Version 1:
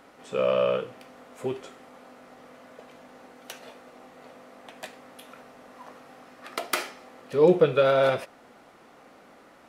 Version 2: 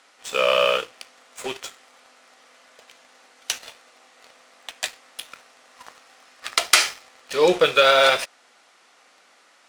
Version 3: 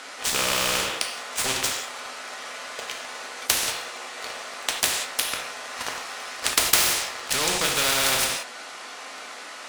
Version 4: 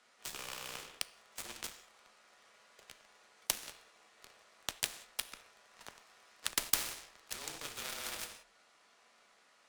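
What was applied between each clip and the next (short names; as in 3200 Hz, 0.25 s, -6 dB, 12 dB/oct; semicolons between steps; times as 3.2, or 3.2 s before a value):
weighting filter ITU-R 468; sample leveller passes 2
non-linear reverb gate 0.21 s falling, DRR 2.5 dB; spectral compressor 4:1
added harmonics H 3 -17 dB, 4 -33 dB, 7 -23 dB, 8 -39 dB, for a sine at -1 dBFS; frequency shift -38 Hz; gain -6.5 dB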